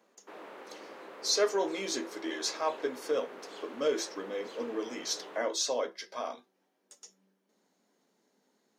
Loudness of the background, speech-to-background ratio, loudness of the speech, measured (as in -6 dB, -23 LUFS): -47.5 LUFS, 14.5 dB, -33.0 LUFS